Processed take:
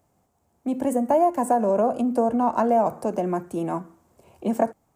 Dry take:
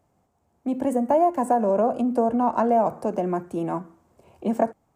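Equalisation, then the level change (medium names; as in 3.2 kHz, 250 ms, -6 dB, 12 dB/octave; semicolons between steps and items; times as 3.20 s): treble shelf 5.9 kHz +8 dB; 0.0 dB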